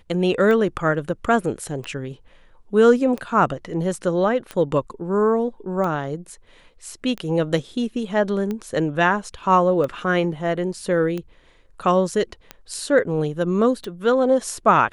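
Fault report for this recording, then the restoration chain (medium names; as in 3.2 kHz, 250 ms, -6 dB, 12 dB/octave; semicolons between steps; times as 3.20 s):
tick 45 rpm -16 dBFS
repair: de-click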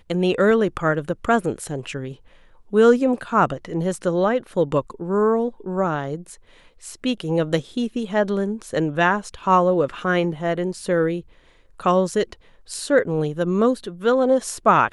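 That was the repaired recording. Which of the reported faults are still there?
nothing left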